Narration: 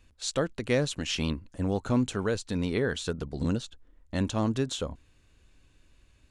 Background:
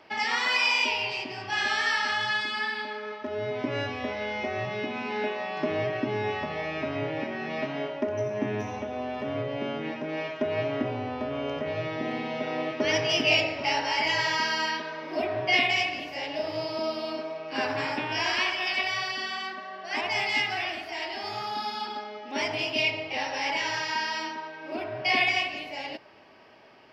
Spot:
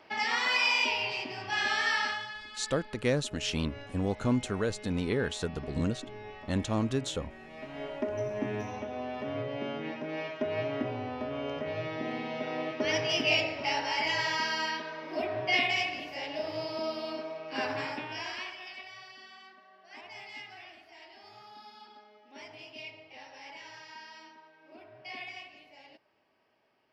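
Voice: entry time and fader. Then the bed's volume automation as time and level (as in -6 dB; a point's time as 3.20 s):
2.35 s, -2.0 dB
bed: 2.04 s -2.5 dB
2.34 s -15.5 dB
7.52 s -15.5 dB
7.94 s -4 dB
17.73 s -4 dB
18.86 s -18.5 dB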